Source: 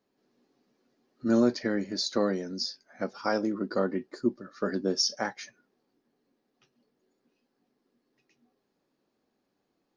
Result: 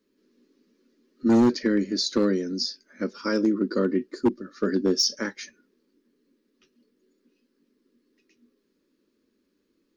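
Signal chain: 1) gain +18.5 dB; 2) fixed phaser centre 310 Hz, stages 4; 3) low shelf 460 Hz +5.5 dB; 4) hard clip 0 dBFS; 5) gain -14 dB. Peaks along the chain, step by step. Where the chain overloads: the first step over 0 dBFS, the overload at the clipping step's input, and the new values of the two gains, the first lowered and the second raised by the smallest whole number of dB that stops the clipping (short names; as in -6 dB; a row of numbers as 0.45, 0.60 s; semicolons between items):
+7.0, +4.0, +7.5, 0.0, -14.0 dBFS; step 1, 7.5 dB; step 1 +10.5 dB, step 5 -6 dB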